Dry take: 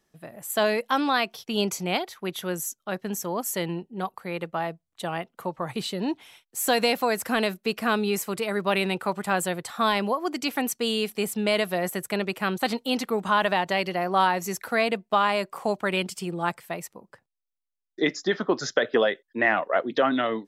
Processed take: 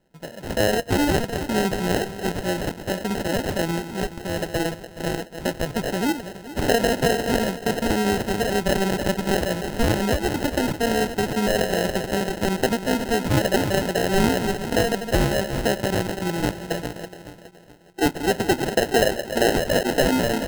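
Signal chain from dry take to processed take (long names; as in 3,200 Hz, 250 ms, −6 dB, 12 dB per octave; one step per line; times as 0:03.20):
feedback delay that plays each chunk backwards 211 ms, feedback 62%, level −11 dB
in parallel at 0 dB: brickwall limiter −18 dBFS, peak gain reduction 9.5 dB
on the sum: decimation without filtering 38×
level −1 dB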